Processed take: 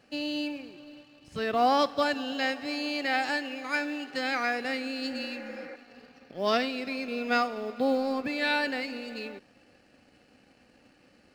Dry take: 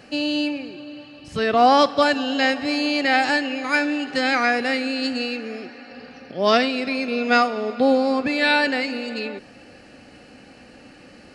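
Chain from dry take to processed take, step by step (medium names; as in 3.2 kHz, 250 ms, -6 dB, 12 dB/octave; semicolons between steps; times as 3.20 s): companding laws mixed up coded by A; 2.32–4.65 s: bass shelf 140 Hz -8.5 dB; 5.12–5.73 s: spectral replace 290–2400 Hz before; trim -8.5 dB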